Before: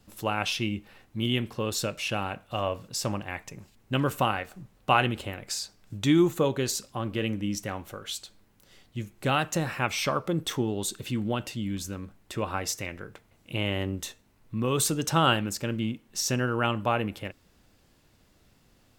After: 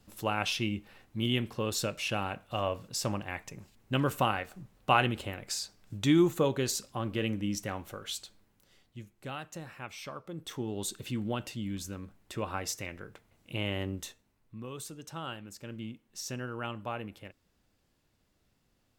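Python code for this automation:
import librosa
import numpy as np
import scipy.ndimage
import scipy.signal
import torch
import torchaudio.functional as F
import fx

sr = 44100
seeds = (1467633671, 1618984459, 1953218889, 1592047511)

y = fx.gain(x, sr, db=fx.line((8.2, -2.5), (9.36, -15.0), (10.27, -15.0), (10.81, -4.5), (13.97, -4.5), (14.84, -17.5), (15.37, -17.5), (15.79, -11.0)))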